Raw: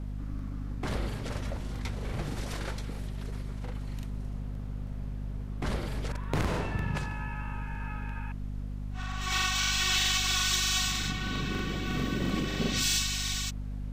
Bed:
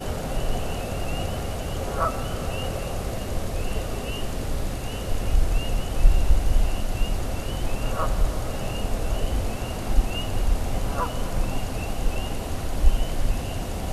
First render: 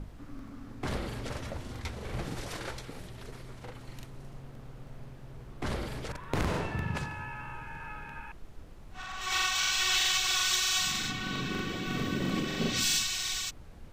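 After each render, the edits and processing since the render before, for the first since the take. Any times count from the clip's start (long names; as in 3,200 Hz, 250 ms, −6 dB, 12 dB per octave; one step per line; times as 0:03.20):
mains-hum notches 50/100/150/200/250 Hz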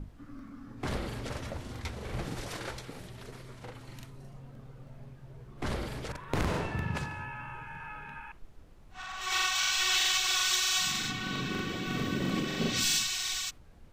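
noise reduction from a noise print 6 dB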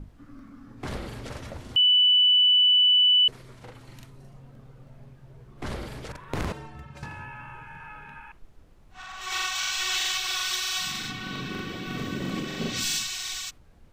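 0:01.76–0:03.28: beep over 2,980 Hz −15.5 dBFS
0:06.52–0:07.03: stiff-string resonator 66 Hz, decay 0.44 s, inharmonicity 0.03
0:10.14–0:11.98: parametric band 7,000 Hz −5.5 dB 0.29 octaves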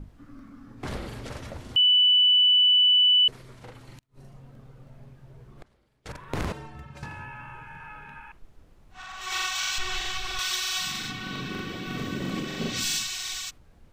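0:03.84–0:06.06: gate with flip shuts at −33 dBFS, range −32 dB
0:09.78–0:10.39: spectral tilt −3 dB per octave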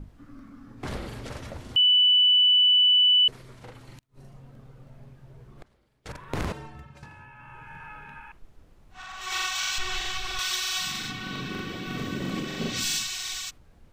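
0:06.67–0:07.74: duck −8 dB, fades 0.39 s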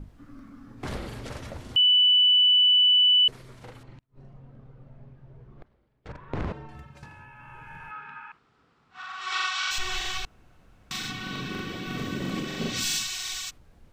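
0:03.83–0:06.69: head-to-tape spacing loss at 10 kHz 26 dB
0:07.91–0:09.71: loudspeaker in its box 190–6,700 Hz, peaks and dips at 200 Hz −4 dB, 330 Hz −7 dB, 590 Hz −10 dB, 1,300 Hz +9 dB, 6,300 Hz −7 dB
0:10.25–0:10.91: fill with room tone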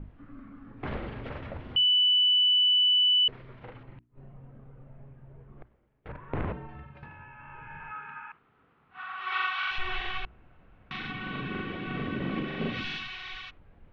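inverse Chebyshev low-pass filter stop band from 8,700 Hz, stop band 60 dB
mains-hum notches 60/120/180/240/300/360 Hz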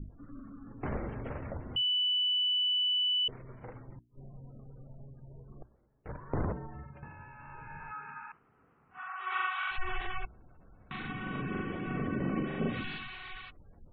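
low-pass filter 1,500 Hz 6 dB per octave
gate on every frequency bin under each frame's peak −30 dB strong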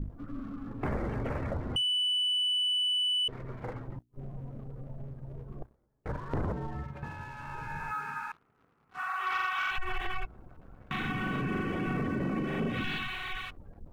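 downward compressor 4 to 1, threshold −35 dBFS, peak gain reduction 8 dB
leveller curve on the samples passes 2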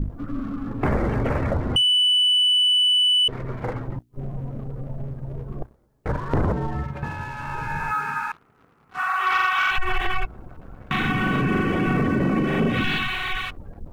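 level +10.5 dB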